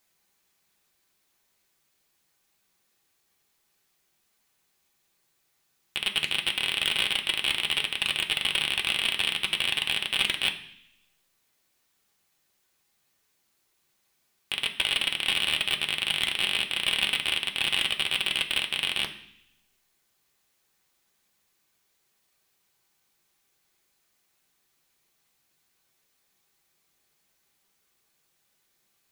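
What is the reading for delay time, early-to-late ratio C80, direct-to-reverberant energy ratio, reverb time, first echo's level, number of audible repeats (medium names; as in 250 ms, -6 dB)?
no echo, 14.5 dB, 2.0 dB, 0.65 s, no echo, no echo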